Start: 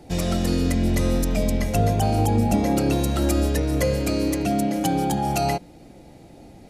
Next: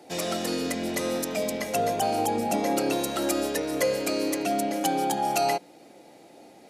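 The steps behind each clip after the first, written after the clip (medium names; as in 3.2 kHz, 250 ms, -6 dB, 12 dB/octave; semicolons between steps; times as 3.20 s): high-pass 370 Hz 12 dB/octave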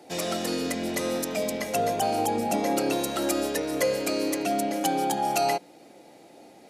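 no audible change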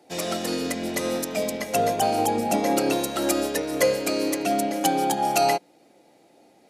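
upward expansion 1.5:1, over -43 dBFS; trim +5 dB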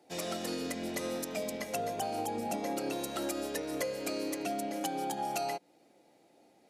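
compression, threshold -24 dBFS, peak gain reduction 8.5 dB; trim -7.5 dB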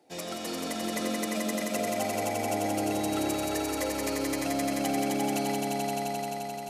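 echo with a slow build-up 87 ms, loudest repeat 5, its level -4.5 dB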